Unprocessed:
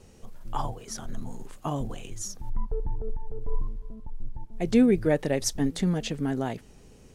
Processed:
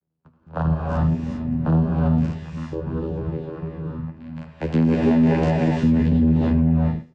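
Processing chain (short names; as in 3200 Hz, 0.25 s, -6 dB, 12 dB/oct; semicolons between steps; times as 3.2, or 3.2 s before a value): delta modulation 32 kbps, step -38 dBFS; 4.16–5.67 tilt shelf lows -9 dB, about 710 Hz; spectral noise reduction 13 dB; gate -49 dBFS, range -31 dB; speakerphone echo 80 ms, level -15 dB; vocoder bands 8, saw 80.6 Hz; LPF 2700 Hz 6 dB/oct; low shelf 140 Hz +11.5 dB; non-linear reverb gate 0.43 s rising, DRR -3 dB; flange 0.54 Hz, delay 4.8 ms, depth 9.7 ms, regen +48%; maximiser +20.5 dB; gain -9 dB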